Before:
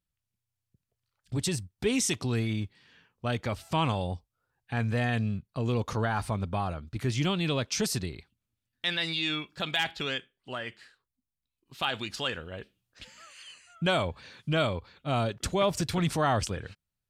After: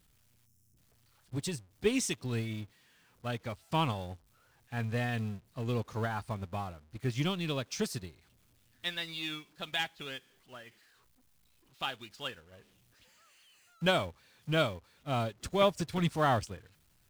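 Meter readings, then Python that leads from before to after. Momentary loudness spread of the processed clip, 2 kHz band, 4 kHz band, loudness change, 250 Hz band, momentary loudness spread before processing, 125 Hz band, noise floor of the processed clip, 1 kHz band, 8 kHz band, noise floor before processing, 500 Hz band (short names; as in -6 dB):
16 LU, -4.5 dB, -5.5 dB, -4.0 dB, -4.5 dB, 14 LU, -5.0 dB, -68 dBFS, -3.0 dB, -7.0 dB, under -85 dBFS, -2.5 dB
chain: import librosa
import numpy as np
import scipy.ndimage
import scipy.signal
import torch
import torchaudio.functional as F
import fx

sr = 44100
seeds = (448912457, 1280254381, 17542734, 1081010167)

y = x + 0.5 * 10.0 ** (-36.5 / 20.0) * np.sign(x)
y = fx.spec_box(y, sr, start_s=0.46, length_s=0.31, low_hz=430.0, high_hz=5100.0, gain_db=-15)
y = fx.upward_expand(y, sr, threshold_db=-38.0, expansion=2.5)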